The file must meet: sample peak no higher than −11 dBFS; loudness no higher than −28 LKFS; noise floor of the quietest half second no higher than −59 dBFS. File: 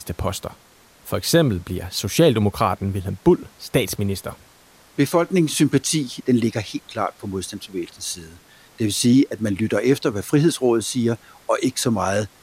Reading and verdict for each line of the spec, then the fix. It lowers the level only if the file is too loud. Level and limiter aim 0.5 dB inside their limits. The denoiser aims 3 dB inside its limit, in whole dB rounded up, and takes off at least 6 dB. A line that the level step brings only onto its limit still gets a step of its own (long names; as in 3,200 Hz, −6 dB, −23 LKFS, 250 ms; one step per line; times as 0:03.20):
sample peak −4.0 dBFS: out of spec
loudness −21.0 LKFS: out of spec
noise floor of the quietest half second −52 dBFS: out of spec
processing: level −7.5 dB